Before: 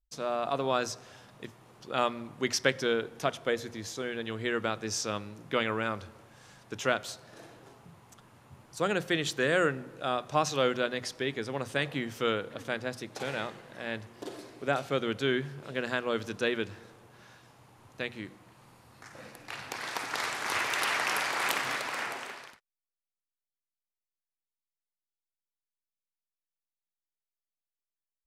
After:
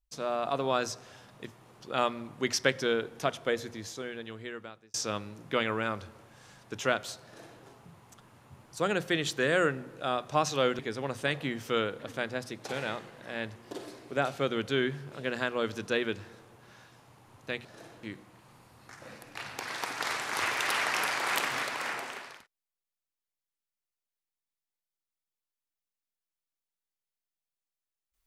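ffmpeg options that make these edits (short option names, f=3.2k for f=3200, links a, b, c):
-filter_complex "[0:a]asplit=5[a][b][c][d][e];[a]atrim=end=4.94,asetpts=PTS-STARTPTS,afade=t=out:st=3.62:d=1.32[f];[b]atrim=start=4.94:end=10.792,asetpts=PTS-STARTPTS,afade=t=in:d=0.004:c=hsin[g];[c]atrim=start=11.298:end=18.162[h];[d]atrim=start=7.238:end=7.622[i];[e]atrim=start=18.158[j];[f][g]concat=n=2:v=0:a=1[k];[k][h]acrossfade=d=0.004:c1=hsin:c2=hsin[l];[l][i]acrossfade=d=0.004:c1=hsin:c2=hsin[m];[m][j]acrossfade=d=0.004:c1=hsin:c2=hsin"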